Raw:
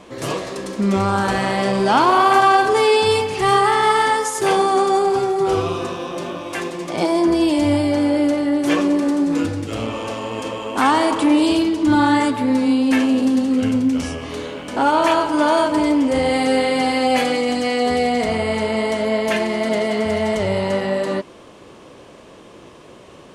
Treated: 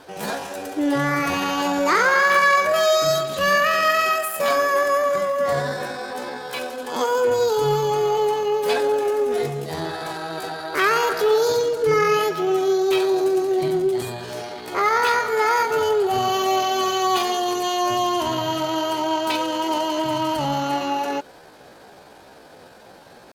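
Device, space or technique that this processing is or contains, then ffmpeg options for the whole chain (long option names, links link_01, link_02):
chipmunk voice: -af "asetrate=64194,aresample=44100,atempo=0.686977,volume=-3dB"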